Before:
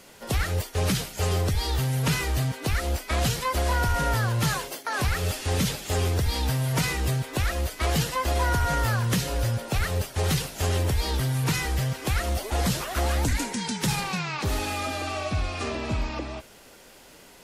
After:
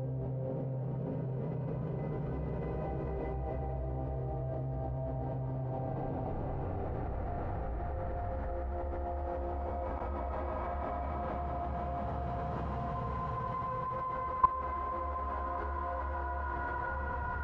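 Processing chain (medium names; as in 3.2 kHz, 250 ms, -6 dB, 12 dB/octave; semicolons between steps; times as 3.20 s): low-pass sweep 480 Hz -> 1.5 kHz, 1.68–4.24 s; Paulstretch 9.2×, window 0.50 s, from 1.91 s; level held to a coarse grid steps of 17 dB; trim -2 dB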